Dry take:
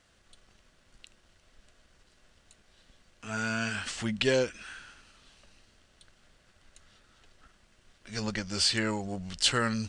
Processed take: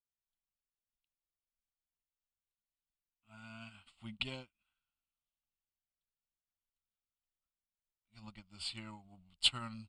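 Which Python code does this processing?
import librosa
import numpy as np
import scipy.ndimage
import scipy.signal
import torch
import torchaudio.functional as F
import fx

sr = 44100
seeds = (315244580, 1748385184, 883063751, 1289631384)

y = fx.fixed_phaser(x, sr, hz=1700.0, stages=6)
y = fx.upward_expand(y, sr, threshold_db=-51.0, expansion=2.5)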